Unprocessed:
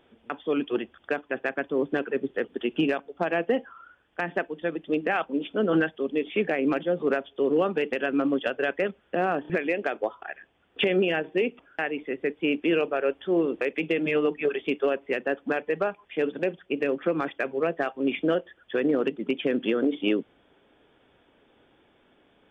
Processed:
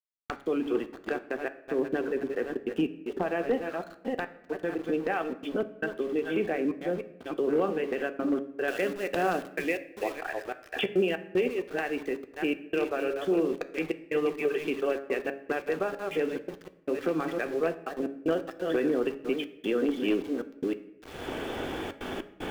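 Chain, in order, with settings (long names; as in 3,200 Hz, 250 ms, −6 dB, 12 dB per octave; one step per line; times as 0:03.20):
delay that plays each chunk backwards 319 ms, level −10 dB
camcorder AGC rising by 44 dB per second
centre clipping without the shift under −37.5 dBFS
gate pattern "x..xxxxxxxxx.x" 152 BPM −60 dB
hum removal 138 Hz, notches 17
wave folding −15.5 dBFS
high-shelf EQ 2,800 Hz −11 dB, from 0:08.68 +3 dB, from 0:10.12 −5 dB
convolution reverb RT60 0.90 s, pre-delay 3 ms, DRR 10 dB
level −3 dB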